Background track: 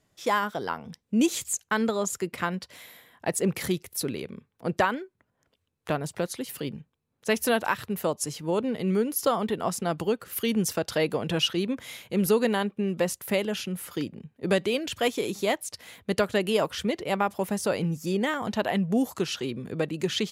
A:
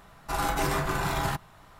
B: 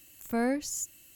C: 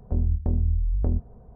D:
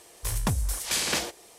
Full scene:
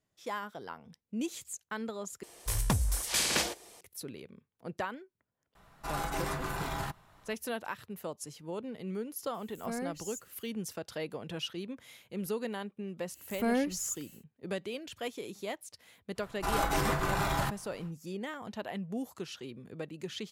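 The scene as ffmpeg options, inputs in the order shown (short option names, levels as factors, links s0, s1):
-filter_complex "[1:a]asplit=2[s0][s1];[2:a]asplit=2[s2][s3];[0:a]volume=0.237,asplit=2[s4][s5];[s4]atrim=end=2.234[s6];[4:a]atrim=end=1.58,asetpts=PTS-STARTPTS,volume=0.794[s7];[s5]atrim=start=3.806[s8];[s0]atrim=end=1.79,asetpts=PTS-STARTPTS,volume=0.422,afade=t=in:d=0.004:c=hsin,afade=t=out:st=1.786:d=0.004:c=hsin,adelay=5550[s9];[s2]atrim=end=1.15,asetpts=PTS-STARTPTS,volume=0.335,afade=t=in:d=0.004:c=hsin,afade=t=out:st=1.146:d=0.004:c=hsin,adelay=9340[s10];[s3]atrim=end=1.15,asetpts=PTS-STARTPTS,volume=0.891,afade=t=in:d=0.1,afade=t=out:st=1.05:d=0.1,adelay=13090[s11];[s1]atrim=end=1.79,asetpts=PTS-STARTPTS,volume=0.75,afade=t=in:d=0.1,afade=t=out:st=1.69:d=0.1,adelay=16140[s12];[s6][s7]acrossfade=d=0.004:c1=hsin:c2=hsin[s13];[s13][s8]acrossfade=d=0.004:c1=hsin:c2=hsin[s14];[s14][s9][s10][s11][s12]amix=inputs=5:normalize=0"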